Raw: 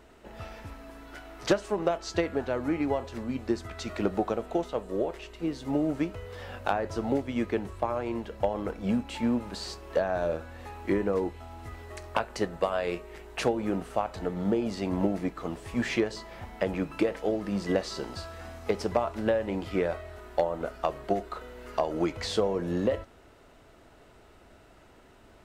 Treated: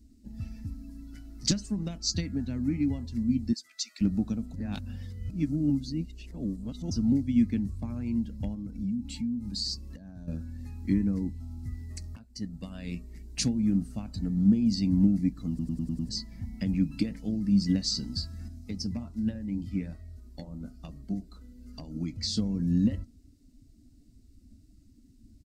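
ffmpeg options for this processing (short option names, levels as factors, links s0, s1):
-filter_complex "[0:a]asettb=1/sr,asplit=3[s0][s1][s2];[s0]atrim=end=3.534[s3];[s1]atrim=start=3.53:end=4.01,asetpts=PTS-STARTPTS,afade=t=in:d=0.004:c=qsin,afade=t=out:st=0.476:d=0.004:c=qsin,highpass=1300[s4];[s2]atrim=start=4.006[s5];[s3][s4]acrossfade=d=0.004:c1=hsin:c2=qsin[s6];[s6][s5]acrossfade=d=0.004:c1=qsin:c2=hsin,asettb=1/sr,asplit=3[s7][s8][s9];[s7]atrim=end=8.544[s10];[s8]atrim=start=8.54:end=10.28,asetpts=PTS-STARTPTS,afade=t=in:d=0.004:c=qsin,afade=t=out:st=1.736:d=0.004:c=qsin,acompressor=threshold=0.0178:ratio=10:attack=3.2:release=140:knee=1:detection=peak[s11];[s9]atrim=start=10.276[s12];[s10][s11]acrossfade=d=0.004:c1=hsin:c2=qsin[s13];[s13][s12]acrossfade=d=0.004:c1=qsin:c2=hsin,asettb=1/sr,asplit=3[s14][s15][s16];[s14]atrim=end=18.484[s17];[s15]atrim=start=18.48:end=22.37,asetpts=PTS-STARTPTS,afade=t=in:d=0.004:c=qsin,afade=t=out:st=3.886:d=0.004:c=qsin,flanger=delay=2:depth=9.4:regen=-68:speed=1.2:shape=triangular[s18];[s16]atrim=start=22.366[s19];[s17][s18]acrossfade=d=0.004:c1=hsin:c2=qsin[s20];[s20][s19]acrossfade=d=0.004:c1=qsin:c2=hsin,asplit=10[s21][s22][s23][s24][s25][s26][s27][s28][s29][s30];[s21]atrim=end=4.542[s31];[s22]atrim=start=4.538:end=6.912,asetpts=PTS-STARTPTS,areverse[s32];[s23]atrim=start=6.908:end=12.16,asetpts=PTS-STARTPTS,afade=t=out:st=5.248:d=0.004:c=hsin:silence=0.149624[s33];[s24]atrim=start=12.16:end=15.592,asetpts=PTS-STARTPTS,afade=t=in:d=0.83:silence=0.149624[s34];[s25]atrim=start=15.488:end=15.592[s35];[s26]atrim=start=15.488:end=15.592[s36];[s27]atrim=start=15.488:end=15.592[s37];[s28]atrim=start=15.488:end=15.592[s38];[s29]atrim=start=15.488:end=15.592[s39];[s30]atrim=start=16.088[s40];[s31][s32]acrossfade=d=0.004:c1=hsin:c2=hsin[s41];[s33][s34]concat=n=2:v=0:a=1[s42];[s41][s42]acrossfade=d=0.004:c1=hsin:c2=hsin[s43];[s43][s35]acrossfade=d=0.004:c1=hsin:c2=hsin[s44];[s44][s36]acrossfade=d=0.004:c1=hsin:c2=hsin[s45];[s45][s37]acrossfade=d=0.004:c1=hsin:c2=hsin[s46];[s46][s38]acrossfade=d=0.004:c1=hsin:c2=hsin[s47];[s47][s39]acrossfade=d=0.004:c1=hsin:c2=hsin[s48];[s48][s40]acrossfade=d=0.004:c1=hsin:c2=hsin,equalizer=f=300:w=3:g=10.5,afftdn=nr=16:nf=-46,firequalizer=gain_entry='entry(230,0);entry(340,-26);entry(640,-28);entry(1200,-27);entry(2100,-14);entry(3100,-12);entry(4600,5)':delay=0.05:min_phase=1,volume=2.11"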